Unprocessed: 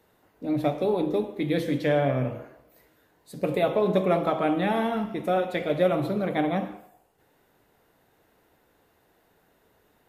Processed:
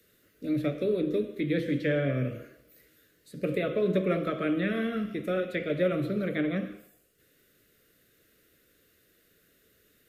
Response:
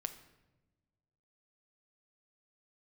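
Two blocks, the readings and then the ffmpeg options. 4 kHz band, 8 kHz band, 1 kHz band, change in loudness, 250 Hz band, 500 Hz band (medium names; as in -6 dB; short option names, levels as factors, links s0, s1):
-4.5 dB, no reading, -12.5 dB, -3.5 dB, -2.0 dB, -4.5 dB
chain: -filter_complex "[0:a]highshelf=f=2500:g=8.5,acrossover=split=370|530|2700[s0][s1][s2][s3];[s3]acompressor=threshold=0.00178:ratio=6[s4];[s0][s1][s2][s4]amix=inputs=4:normalize=0,asuperstop=centerf=860:order=4:qfactor=1.1,volume=0.794"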